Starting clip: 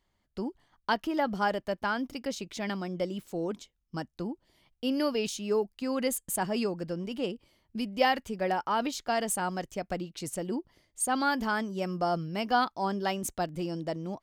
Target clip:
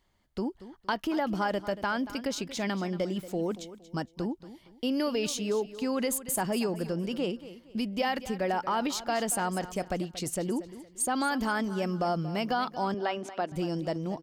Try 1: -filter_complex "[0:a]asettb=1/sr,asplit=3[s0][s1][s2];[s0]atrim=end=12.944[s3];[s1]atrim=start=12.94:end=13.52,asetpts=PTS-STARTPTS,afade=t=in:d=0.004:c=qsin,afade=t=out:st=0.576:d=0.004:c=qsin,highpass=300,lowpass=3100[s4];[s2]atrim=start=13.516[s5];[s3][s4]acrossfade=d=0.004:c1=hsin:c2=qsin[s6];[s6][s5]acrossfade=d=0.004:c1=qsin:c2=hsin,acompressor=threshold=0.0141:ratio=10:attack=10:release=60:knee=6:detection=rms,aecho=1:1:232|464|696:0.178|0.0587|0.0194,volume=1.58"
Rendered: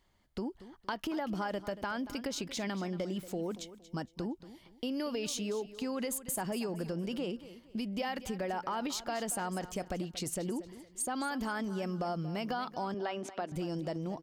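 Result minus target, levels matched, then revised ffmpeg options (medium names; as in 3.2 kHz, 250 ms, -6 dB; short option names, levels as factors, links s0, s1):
compression: peak gain reduction +7 dB
-filter_complex "[0:a]asettb=1/sr,asplit=3[s0][s1][s2];[s0]atrim=end=12.944[s3];[s1]atrim=start=12.94:end=13.52,asetpts=PTS-STARTPTS,afade=t=in:d=0.004:c=qsin,afade=t=out:st=0.576:d=0.004:c=qsin,highpass=300,lowpass=3100[s4];[s2]atrim=start=13.516[s5];[s3][s4]acrossfade=d=0.004:c1=hsin:c2=qsin[s6];[s6][s5]acrossfade=d=0.004:c1=qsin:c2=hsin,acompressor=threshold=0.0355:ratio=10:attack=10:release=60:knee=6:detection=rms,aecho=1:1:232|464|696:0.178|0.0587|0.0194,volume=1.58"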